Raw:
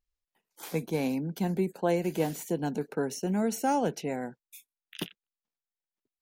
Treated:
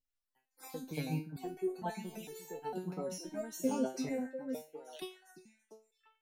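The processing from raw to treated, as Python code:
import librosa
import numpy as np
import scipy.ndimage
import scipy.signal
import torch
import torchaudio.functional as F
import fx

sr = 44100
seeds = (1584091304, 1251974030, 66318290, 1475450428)

y = fx.spec_dropout(x, sr, seeds[0], share_pct=30)
y = fx.echo_stepped(y, sr, ms=347, hz=200.0, octaves=1.4, feedback_pct=70, wet_db=-3)
y = fx.resonator_held(y, sr, hz=2.2, low_hz=130.0, high_hz=440.0)
y = y * 10.0 ** (7.5 / 20.0)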